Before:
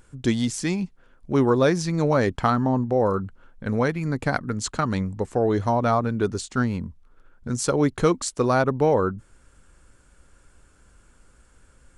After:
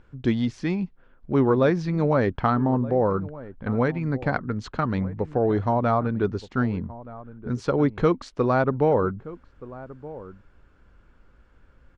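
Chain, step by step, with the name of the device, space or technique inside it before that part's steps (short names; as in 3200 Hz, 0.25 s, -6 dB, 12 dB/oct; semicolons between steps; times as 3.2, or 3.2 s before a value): shout across a valley (air absorption 270 m; outdoor echo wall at 210 m, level -17 dB)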